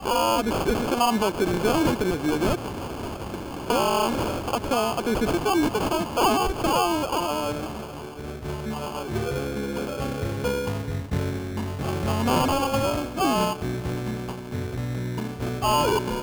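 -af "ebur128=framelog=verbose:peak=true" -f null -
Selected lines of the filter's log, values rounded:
Integrated loudness:
  I:         -25.3 LUFS
  Threshold: -35.4 LUFS
Loudness range:
  LRA:         5.5 LU
  Threshold: -45.7 LUFS
  LRA low:   -29.2 LUFS
  LRA high:  -23.7 LUFS
True peak:
  Peak:       -9.6 dBFS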